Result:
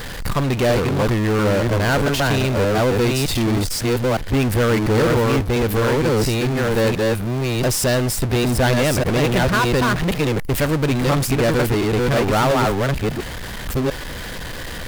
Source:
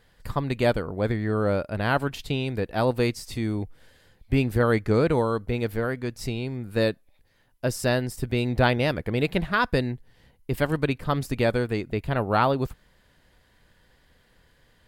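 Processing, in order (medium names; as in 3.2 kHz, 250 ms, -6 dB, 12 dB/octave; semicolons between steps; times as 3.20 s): chunks repeated in reverse 695 ms, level -3 dB; power-law waveshaper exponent 0.35; trim -4 dB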